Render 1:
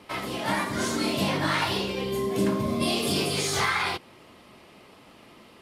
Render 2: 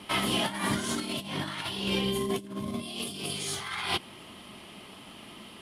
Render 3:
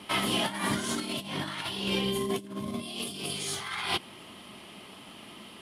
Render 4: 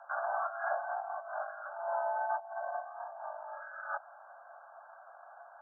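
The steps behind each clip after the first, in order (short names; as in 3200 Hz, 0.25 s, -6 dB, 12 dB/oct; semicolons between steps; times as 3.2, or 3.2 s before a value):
thirty-one-band EQ 200 Hz +5 dB, 500 Hz -6 dB, 3150 Hz +9 dB, 10000 Hz +10 dB; negative-ratio compressor -29 dBFS, ratio -0.5; gain -2 dB
low shelf 64 Hz -8.5 dB
brick-wall FIR low-pass 1200 Hz; frequency shift +480 Hz; gain -3 dB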